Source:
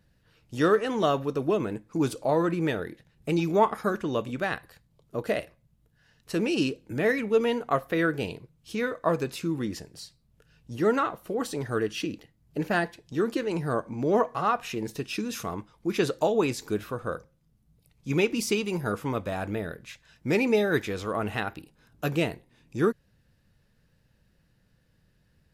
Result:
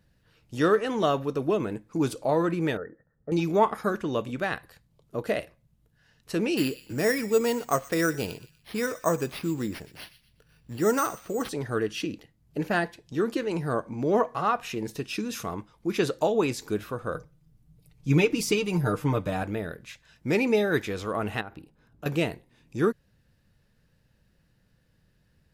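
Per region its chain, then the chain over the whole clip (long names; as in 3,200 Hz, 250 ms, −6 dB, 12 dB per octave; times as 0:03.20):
0:02.77–0:03.32: Chebyshev low-pass with heavy ripple 1,900 Hz, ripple 9 dB + notch filter 360 Hz, Q 6.2
0:06.57–0:11.49: bad sample-rate conversion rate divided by 6×, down none, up hold + delay with a high-pass on its return 121 ms, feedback 35%, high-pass 2,200 Hz, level −13.5 dB
0:17.14–0:19.43: low-shelf EQ 170 Hz +7.5 dB + comb filter 6.6 ms, depth 58%
0:21.41–0:22.06: high-shelf EQ 2,100 Hz −10 dB + downward compressor 4 to 1, threshold −36 dBFS
whole clip: no processing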